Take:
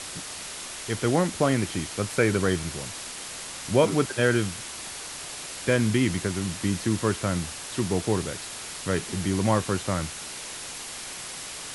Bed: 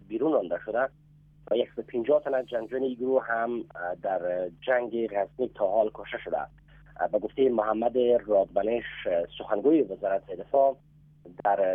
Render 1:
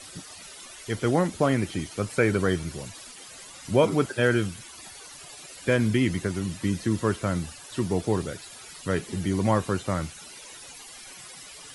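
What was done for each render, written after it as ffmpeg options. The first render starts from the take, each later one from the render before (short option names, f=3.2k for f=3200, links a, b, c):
-af "afftdn=nr=14:nf=-38"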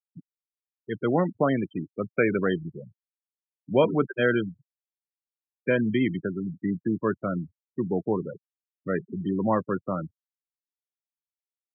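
-af "afftfilt=real='re*gte(hypot(re,im),0.0631)':imag='im*gte(hypot(re,im),0.0631)':win_size=1024:overlap=0.75,highpass=f=140:w=0.5412,highpass=f=140:w=1.3066"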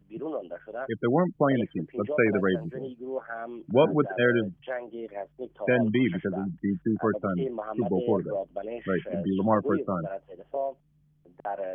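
-filter_complex "[1:a]volume=-8.5dB[a];[0:a][a]amix=inputs=2:normalize=0"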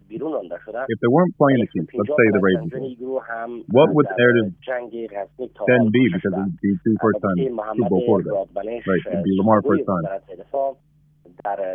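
-af "volume=8dB,alimiter=limit=-1dB:level=0:latency=1"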